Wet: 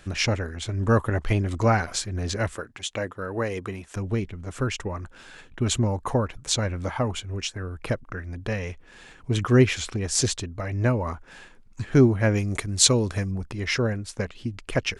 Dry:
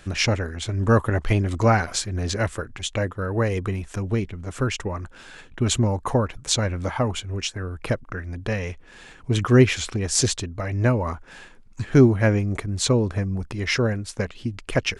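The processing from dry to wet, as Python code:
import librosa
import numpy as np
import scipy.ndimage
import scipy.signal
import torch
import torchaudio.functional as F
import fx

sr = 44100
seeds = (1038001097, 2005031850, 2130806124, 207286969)

y = fx.highpass(x, sr, hz=230.0, slope=6, at=(2.56, 3.96))
y = fx.high_shelf(y, sr, hz=2500.0, db=12.0, at=(12.34, 13.3), fade=0.02)
y = y * 10.0 ** (-2.5 / 20.0)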